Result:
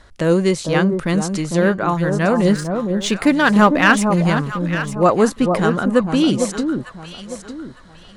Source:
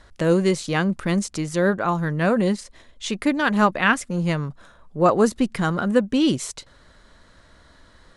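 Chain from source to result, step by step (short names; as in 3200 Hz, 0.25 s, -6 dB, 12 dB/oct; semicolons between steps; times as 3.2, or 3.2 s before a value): 2.45–4.3 sample leveller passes 1; echo with dull and thin repeats by turns 0.452 s, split 1100 Hz, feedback 53%, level -5 dB; gain +3 dB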